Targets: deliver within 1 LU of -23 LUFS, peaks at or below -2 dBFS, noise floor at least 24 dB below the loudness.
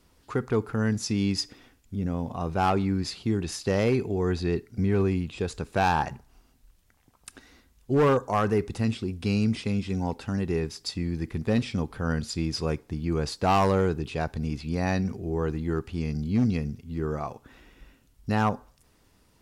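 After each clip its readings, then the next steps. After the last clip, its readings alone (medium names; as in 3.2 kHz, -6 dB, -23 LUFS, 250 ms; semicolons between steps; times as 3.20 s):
clipped samples 0.7%; clipping level -16.5 dBFS; loudness -27.5 LUFS; peak level -16.5 dBFS; loudness target -23.0 LUFS
-> clip repair -16.5 dBFS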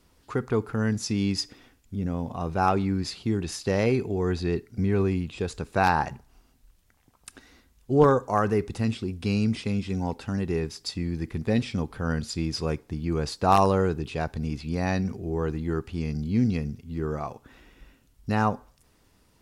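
clipped samples 0.0%; loudness -27.0 LUFS; peak level -7.5 dBFS; loudness target -23.0 LUFS
-> trim +4 dB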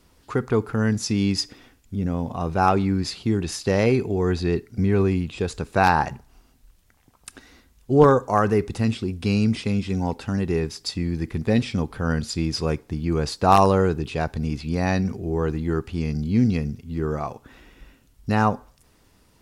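loudness -23.0 LUFS; peak level -3.5 dBFS; noise floor -59 dBFS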